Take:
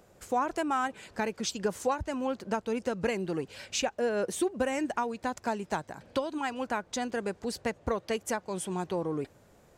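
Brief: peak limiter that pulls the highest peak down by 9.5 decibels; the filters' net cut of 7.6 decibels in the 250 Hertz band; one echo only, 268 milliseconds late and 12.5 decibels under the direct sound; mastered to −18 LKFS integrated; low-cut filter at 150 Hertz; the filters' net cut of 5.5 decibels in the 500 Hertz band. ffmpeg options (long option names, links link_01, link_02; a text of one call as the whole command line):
ffmpeg -i in.wav -af "highpass=150,equalizer=frequency=250:width_type=o:gain=-7.5,equalizer=frequency=500:width_type=o:gain=-4.5,alimiter=level_in=3.5dB:limit=-24dB:level=0:latency=1,volume=-3.5dB,aecho=1:1:268:0.237,volume=21dB" out.wav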